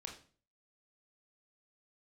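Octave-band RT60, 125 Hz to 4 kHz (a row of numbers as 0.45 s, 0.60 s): 0.55 s, 0.50 s, 0.45 s, 0.40 s, 0.40 s, 0.35 s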